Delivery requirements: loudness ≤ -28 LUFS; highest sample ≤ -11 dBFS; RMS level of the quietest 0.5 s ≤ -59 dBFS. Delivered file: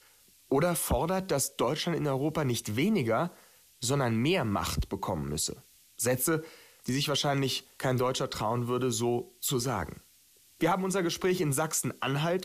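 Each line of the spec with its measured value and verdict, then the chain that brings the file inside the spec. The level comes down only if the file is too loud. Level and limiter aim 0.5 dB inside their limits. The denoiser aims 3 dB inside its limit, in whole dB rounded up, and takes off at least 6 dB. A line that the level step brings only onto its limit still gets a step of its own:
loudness -30.0 LUFS: OK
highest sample -17.0 dBFS: OK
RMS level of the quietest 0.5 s -61 dBFS: OK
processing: none

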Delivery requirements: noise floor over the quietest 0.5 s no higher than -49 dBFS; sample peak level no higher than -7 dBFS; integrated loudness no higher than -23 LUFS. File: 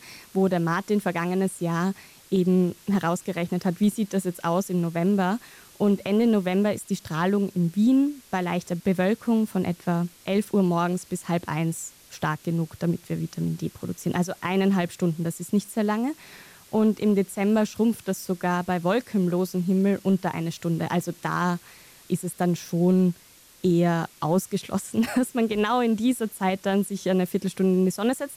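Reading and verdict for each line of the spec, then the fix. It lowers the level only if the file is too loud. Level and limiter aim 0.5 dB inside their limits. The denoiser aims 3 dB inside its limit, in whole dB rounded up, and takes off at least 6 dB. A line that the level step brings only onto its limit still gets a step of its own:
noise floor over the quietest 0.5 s -53 dBFS: OK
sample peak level -12.0 dBFS: OK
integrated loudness -25.0 LUFS: OK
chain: none

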